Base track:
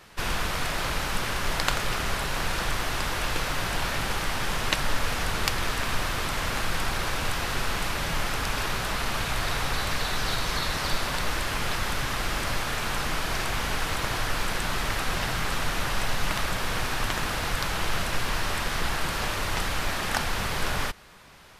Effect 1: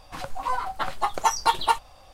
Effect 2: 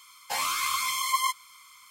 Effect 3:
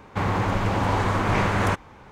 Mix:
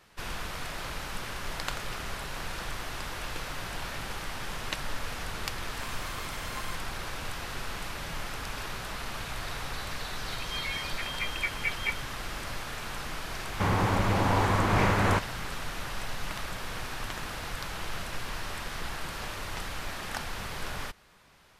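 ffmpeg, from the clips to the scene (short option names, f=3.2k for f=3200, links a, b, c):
-filter_complex "[0:a]volume=-8.5dB[a];[1:a]lowpass=f=2.7k:t=q:w=0.5098,lowpass=f=2.7k:t=q:w=0.6013,lowpass=f=2.7k:t=q:w=0.9,lowpass=f=2.7k:t=q:w=2.563,afreqshift=-3200[b];[2:a]atrim=end=1.9,asetpts=PTS-STARTPTS,volume=-17dB,afade=t=in:d=0.004:c=hsin,afade=t=out:st=1.896:d=0.004:c=hsin,adelay=5440[c];[b]atrim=end=2.13,asetpts=PTS-STARTPTS,volume=-10.5dB,afade=t=in:d=0.004:c=hsin,afade=t=out:st=2.126:d=0.004:c=hsin,adelay=448938S[d];[3:a]atrim=end=2.11,asetpts=PTS-STARTPTS,volume=-2.5dB,afade=t=in:d=0.004:c=hsin,afade=t=out:st=2.106:d=0.004:c=hsin,adelay=13440[e];[a][c][d][e]amix=inputs=4:normalize=0"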